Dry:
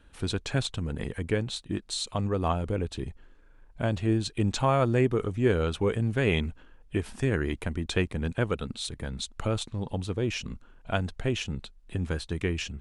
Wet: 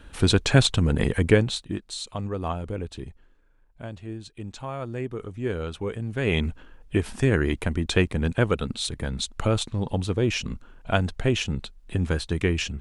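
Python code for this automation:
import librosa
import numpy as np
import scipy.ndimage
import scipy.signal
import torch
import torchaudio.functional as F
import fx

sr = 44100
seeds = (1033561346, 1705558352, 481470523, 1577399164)

y = fx.gain(x, sr, db=fx.line((1.3, 10.5), (1.88, -2.0), (2.97, -2.0), (4.03, -10.5), (4.6, -10.5), (5.56, -4.0), (6.07, -4.0), (6.48, 5.5)))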